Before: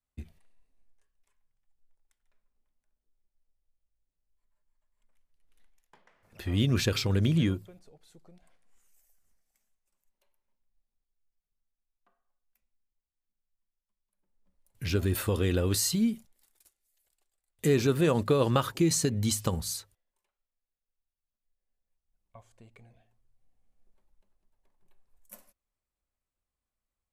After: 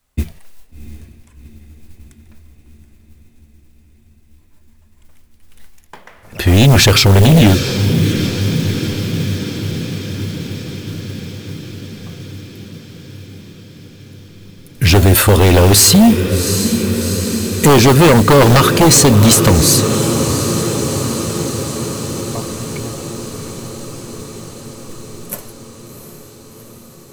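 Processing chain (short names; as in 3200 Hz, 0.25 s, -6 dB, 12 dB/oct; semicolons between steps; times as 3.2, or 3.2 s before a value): in parallel at -2 dB: limiter -20.5 dBFS, peak gain reduction 9 dB; on the sum: diffused feedback echo 0.731 s, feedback 71%, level -11.5 dB; modulation noise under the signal 22 dB; sine folder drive 10 dB, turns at -8.5 dBFS; gain +4.5 dB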